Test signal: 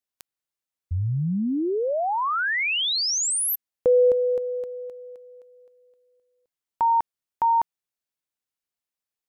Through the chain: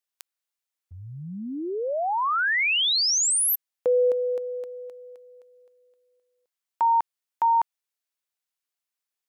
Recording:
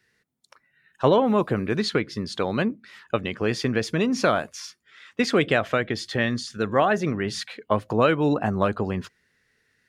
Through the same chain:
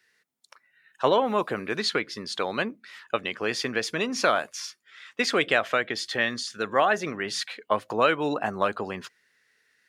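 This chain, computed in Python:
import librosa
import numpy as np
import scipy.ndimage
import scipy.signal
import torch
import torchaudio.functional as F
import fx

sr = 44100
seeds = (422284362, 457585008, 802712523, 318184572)

y = fx.highpass(x, sr, hz=770.0, slope=6)
y = F.gain(torch.from_numpy(y), 2.0).numpy()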